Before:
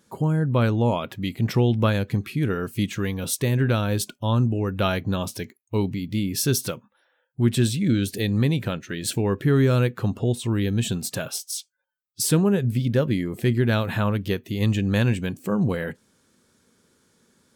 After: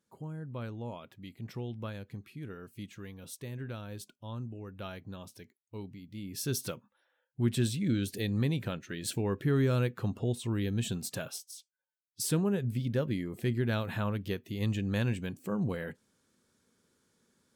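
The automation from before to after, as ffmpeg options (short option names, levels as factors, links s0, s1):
-af "afade=t=in:st=6.14:d=0.57:silence=0.298538,afade=t=out:st=11.23:d=0.33:silence=0.334965,afade=t=in:st=11.56:d=0.7:silence=0.375837"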